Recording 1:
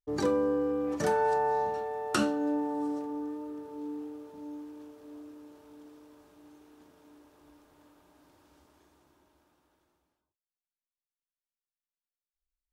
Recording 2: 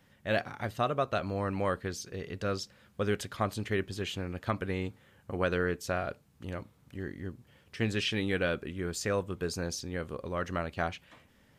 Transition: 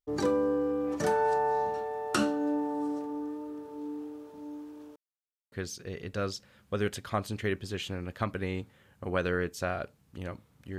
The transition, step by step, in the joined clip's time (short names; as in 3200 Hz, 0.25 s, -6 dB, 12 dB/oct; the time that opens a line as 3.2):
recording 1
4.96–5.52 mute
5.52 switch to recording 2 from 1.79 s